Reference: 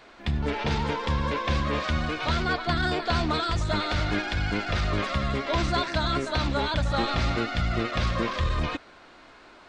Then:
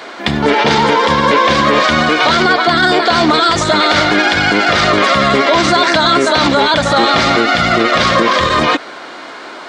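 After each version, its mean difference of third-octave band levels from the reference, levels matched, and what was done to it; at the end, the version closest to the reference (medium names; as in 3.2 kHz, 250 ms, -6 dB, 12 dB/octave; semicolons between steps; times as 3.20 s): 3.5 dB: high-pass 260 Hz 12 dB/octave; band-stop 2.6 kHz, Q 13; loudness maximiser +22.5 dB; trim -1 dB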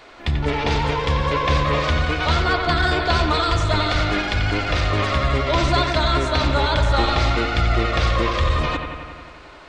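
2.5 dB: peaking EQ 200 Hz -8 dB 0.6 oct; band-stop 1.6 kHz, Q 17; bucket-brigade echo 89 ms, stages 2048, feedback 73%, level -7.5 dB; trim +6.5 dB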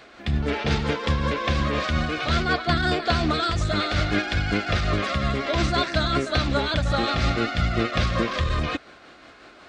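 1.0 dB: high-pass 45 Hz; band-stop 940 Hz, Q 5.3; tremolo 5.5 Hz, depth 32%; trim +5 dB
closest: third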